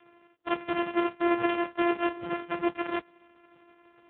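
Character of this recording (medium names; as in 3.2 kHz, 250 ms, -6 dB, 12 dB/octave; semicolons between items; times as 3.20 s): a buzz of ramps at a fixed pitch in blocks of 128 samples; tremolo saw up 11 Hz, depth 35%; AMR-NB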